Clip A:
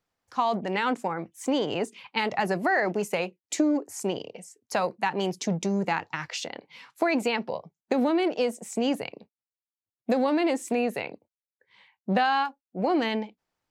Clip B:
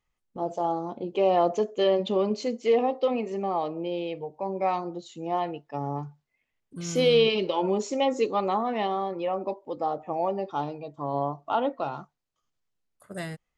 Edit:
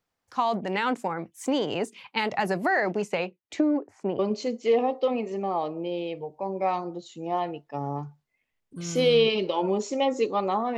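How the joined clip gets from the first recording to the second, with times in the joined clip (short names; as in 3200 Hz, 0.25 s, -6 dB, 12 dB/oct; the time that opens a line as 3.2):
clip A
2.78–4.19 LPF 8400 Hz -> 1300 Hz
4.19 switch to clip B from 2.19 s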